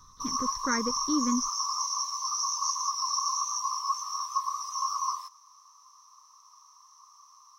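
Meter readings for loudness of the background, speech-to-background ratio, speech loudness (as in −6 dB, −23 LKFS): −29.5 LKFS, −2.5 dB, −32.0 LKFS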